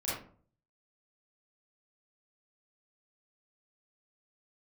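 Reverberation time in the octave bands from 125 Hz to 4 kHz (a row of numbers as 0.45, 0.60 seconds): 0.70, 0.55, 0.50, 0.45, 0.35, 0.25 seconds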